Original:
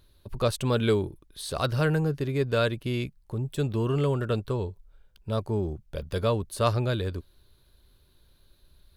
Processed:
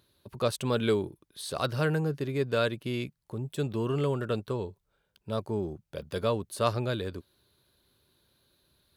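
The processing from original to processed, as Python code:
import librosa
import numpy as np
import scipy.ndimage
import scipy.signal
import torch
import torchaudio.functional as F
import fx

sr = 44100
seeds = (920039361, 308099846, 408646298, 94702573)

y = scipy.signal.sosfilt(scipy.signal.butter(2, 130.0, 'highpass', fs=sr, output='sos'), x)
y = y * 10.0 ** (-2.0 / 20.0)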